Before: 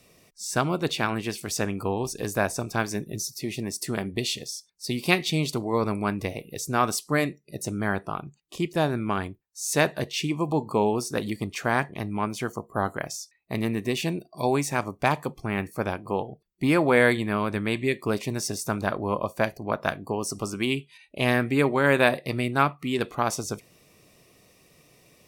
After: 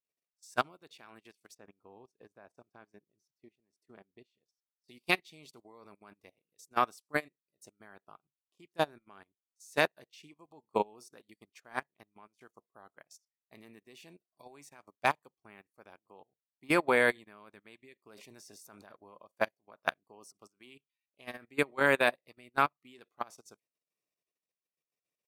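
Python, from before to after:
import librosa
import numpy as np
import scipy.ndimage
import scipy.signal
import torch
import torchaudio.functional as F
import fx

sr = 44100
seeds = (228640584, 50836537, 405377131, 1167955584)

y = fx.lowpass(x, sr, hz=1200.0, slope=6, at=(1.53, 4.85), fade=0.02)
y = fx.sustainer(y, sr, db_per_s=40.0, at=(17.98, 18.92))
y = fx.highpass(y, sr, hz=460.0, slope=6)
y = fx.level_steps(y, sr, step_db=12)
y = fx.upward_expand(y, sr, threshold_db=-46.0, expansion=2.5)
y = F.gain(torch.from_numpy(y), 1.0).numpy()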